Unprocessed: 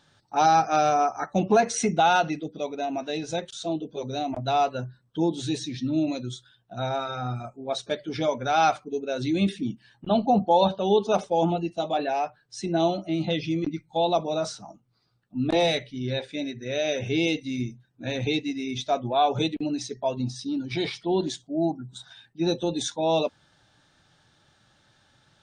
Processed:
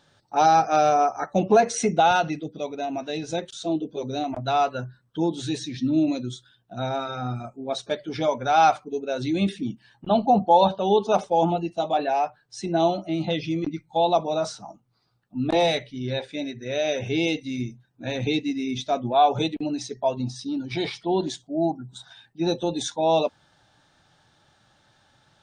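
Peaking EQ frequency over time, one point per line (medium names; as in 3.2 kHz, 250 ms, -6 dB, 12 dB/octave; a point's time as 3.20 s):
peaking EQ +4.5 dB 0.95 oct
530 Hz
from 2.11 s 110 Hz
from 3.29 s 310 Hz
from 4.24 s 1.4 kHz
from 5.77 s 270 Hz
from 7.78 s 870 Hz
from 18.20 s 230 Hz
from 19.14 s 800 Hz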